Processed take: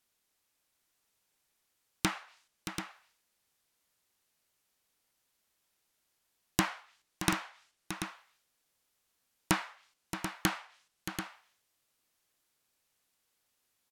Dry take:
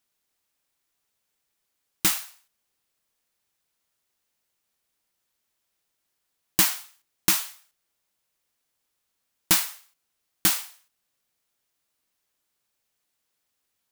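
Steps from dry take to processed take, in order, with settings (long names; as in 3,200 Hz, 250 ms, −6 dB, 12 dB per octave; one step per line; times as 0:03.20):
treble cut that deepens with the level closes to 1,600 Hz, closed at −25.5 dBFS
multi-tap delay 624/736 ms −10.5/−9 dB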